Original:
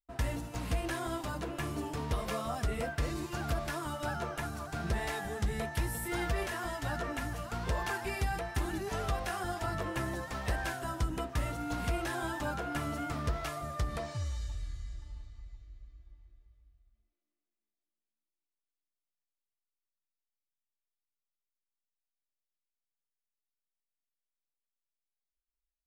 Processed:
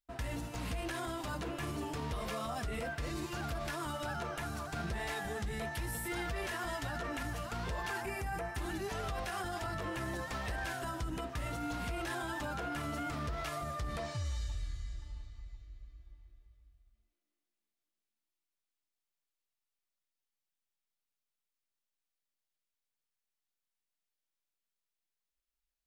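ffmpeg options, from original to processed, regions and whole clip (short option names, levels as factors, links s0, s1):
-filter_complex "[0:a]asettb=1/sr,asplit=3[s0][s1][s2];[s0]atrim=end=8.024[s3];[s1]atrim=start=8.02:end=8.56,asetpts=PTS-STARTPTS,afade=t=in:d=0.004:c=qsin,afade=t=out:st=0.536:d=0.004:c=qsin,highpass=50,equalizer=f=3800:t=o:w=1:g=-11.5[s4];[s2]atrim=start=8.556[s5];[s3][s4]acrossfade=d=0.004:c1=hsin:c2=qsin[s6];[s6][s5]acrossfade=d=0.004:c1=qsin:c2=hsin,alimiter=level_in=2.11:limit=0.0631:level=0:latency=1:release=33,volume=0.473,equalizer=f=3100:w=0.59:g=3"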